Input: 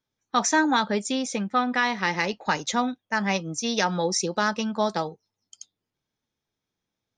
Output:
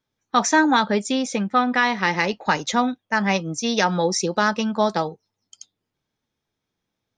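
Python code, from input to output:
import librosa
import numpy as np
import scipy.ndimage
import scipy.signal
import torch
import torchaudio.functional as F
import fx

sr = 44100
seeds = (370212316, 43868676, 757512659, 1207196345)

y = fx.high_shelf(x, sr, hz=6500.0, db=-7.0)
y = y * 10.0 ** (4.5 / 20.0)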